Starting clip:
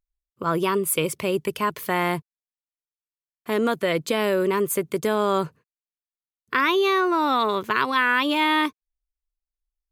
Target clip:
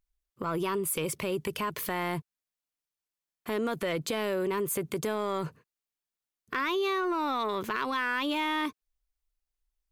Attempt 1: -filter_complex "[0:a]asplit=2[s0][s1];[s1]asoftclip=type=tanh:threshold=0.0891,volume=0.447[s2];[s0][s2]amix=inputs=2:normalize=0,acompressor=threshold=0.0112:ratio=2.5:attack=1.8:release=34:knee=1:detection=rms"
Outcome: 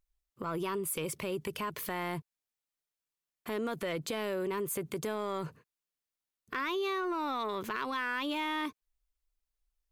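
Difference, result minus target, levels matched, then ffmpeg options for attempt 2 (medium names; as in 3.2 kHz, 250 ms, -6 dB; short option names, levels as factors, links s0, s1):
compression: peak gain reduction +4 dB
-filter_complex "[0:a]asplit=2[s0][s1];[s1]asoftclip=type=tanh:threshold=0.0891,volume=0.447[s2];[s0][s2]amix=inputs=2:normalize=0,acompressor=threshold=0.0251:ratio=2.5:attack=1.8:release=34:knee=1:detection=rms"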